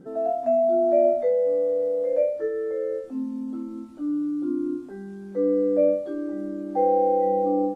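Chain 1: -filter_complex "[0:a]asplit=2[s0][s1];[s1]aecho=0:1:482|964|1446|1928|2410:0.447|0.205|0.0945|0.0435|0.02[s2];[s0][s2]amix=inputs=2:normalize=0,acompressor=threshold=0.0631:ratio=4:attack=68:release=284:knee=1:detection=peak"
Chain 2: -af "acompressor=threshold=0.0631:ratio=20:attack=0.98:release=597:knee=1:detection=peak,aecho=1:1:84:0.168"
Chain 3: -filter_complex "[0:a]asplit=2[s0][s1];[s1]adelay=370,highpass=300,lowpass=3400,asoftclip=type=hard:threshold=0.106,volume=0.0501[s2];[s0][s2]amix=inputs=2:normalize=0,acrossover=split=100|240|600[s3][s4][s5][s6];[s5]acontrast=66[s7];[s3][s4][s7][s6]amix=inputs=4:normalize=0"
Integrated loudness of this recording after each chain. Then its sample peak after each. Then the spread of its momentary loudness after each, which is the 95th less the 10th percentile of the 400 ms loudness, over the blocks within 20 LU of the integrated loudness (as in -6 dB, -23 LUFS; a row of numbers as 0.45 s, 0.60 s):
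-26.5 LUFS, -30.5 LUFS, -20.0 LUFS; -13.0 dBFS, -21.5 dBFS, -6.0 dBFS; 6 LU, 4 LU, 11 LU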